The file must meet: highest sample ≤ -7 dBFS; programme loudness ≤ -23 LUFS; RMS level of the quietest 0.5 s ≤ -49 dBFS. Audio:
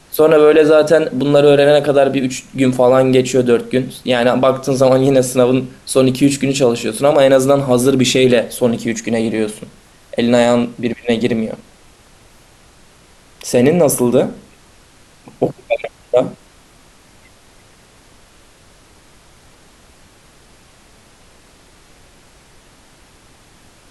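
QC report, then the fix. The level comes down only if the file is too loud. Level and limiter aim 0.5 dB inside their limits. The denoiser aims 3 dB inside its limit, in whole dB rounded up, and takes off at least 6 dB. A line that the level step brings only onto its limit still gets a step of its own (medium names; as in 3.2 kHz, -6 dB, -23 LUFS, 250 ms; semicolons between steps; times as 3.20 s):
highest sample -1.5 dBFS: fail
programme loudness -14.0 LUFS: fail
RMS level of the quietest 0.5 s -47 dBFS: fail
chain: trim -9.5 dB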